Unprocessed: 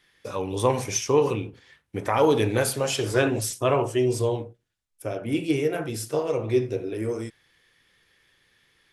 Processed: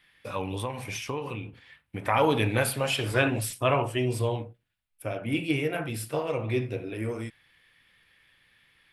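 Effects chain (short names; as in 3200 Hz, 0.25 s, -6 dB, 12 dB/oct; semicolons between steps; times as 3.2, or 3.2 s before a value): fifteen-band EQ 400 Hz -8 dB, 2500 Hz +5 dB, 6300 Hz -12 dB; 0.55–2.04 compressor 4:1, threshold -31 dBFS, peak gain reduction 11 dB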